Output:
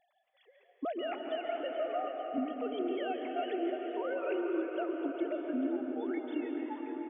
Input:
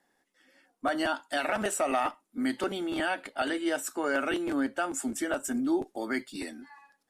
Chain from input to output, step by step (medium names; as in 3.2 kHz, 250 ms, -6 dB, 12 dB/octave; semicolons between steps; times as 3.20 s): formants replaced by sine waves; peaking EQ 1.6 kHz -14.5 dB 0.78 oct; compression 4:1, threshold -45 dBFS, peak gain reduction 22.5 dB; on a send: feedback delay 436 ms, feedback 56%, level -11 dB; on the sum: plate-style reverb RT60 4.7 s, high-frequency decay 0.55×, pre-delay 115 ms, DRR 2 dB; trim +8.5 dB